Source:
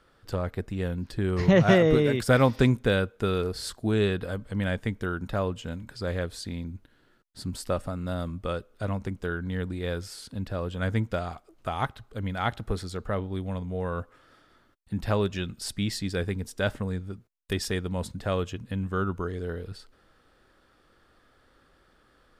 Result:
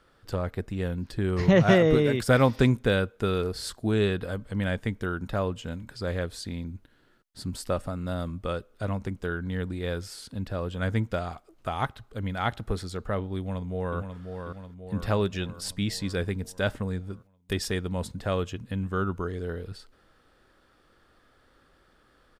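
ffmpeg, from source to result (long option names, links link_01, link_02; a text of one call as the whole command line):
ffmpeg -i in.wav -filter_complex "[0:a]asplit=2[link_01][link_02];[link_02]afade=type=in:start_time=13.38:duration=0.01,afade=type=out:start_time=13.98:duration=0.01,aecho=0:1:540|1080|1620|2160|2700|3240|3780|4320:0.473151|0.283891|0.170334|0.102201|0.0613204|0.0367922|0.0220753|0.0132452[link_03];[link_01][link_03]amix=inputs=2:normalize=0" out.wav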